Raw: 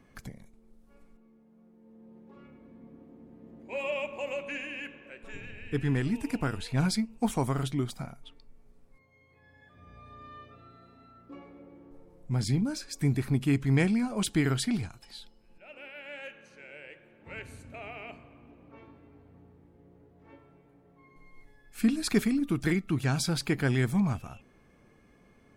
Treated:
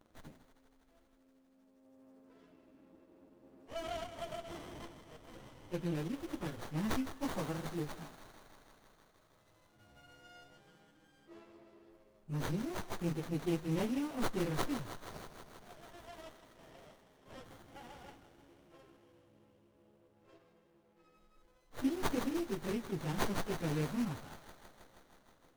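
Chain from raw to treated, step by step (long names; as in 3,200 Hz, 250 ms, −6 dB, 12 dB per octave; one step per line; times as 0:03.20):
phase-vocoder pitch shift without resampling +3 semitones
bass and treble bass −5 dB, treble +14 dB
on a send: feedback echo with a high-pass in the loop 159 ms, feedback 80%, high-pass 1,100 Hz, level −10 dB
on the sum: windowed peak hold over 17 samples
level −5 dB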